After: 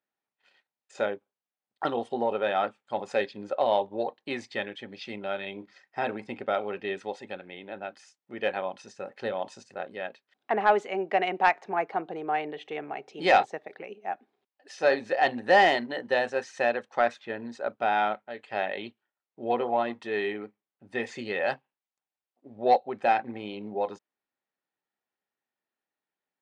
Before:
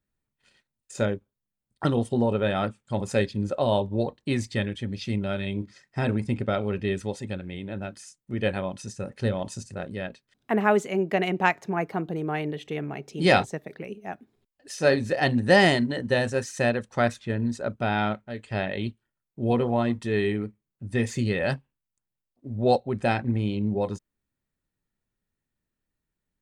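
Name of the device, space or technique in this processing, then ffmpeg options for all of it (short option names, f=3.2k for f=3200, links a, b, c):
intercom: -af "highpass=450,lowpass=3.6k,equalizer=f=780:t=o:w=0.25:g=7.5,asoftclip=type=tanh:threshold=-9dB"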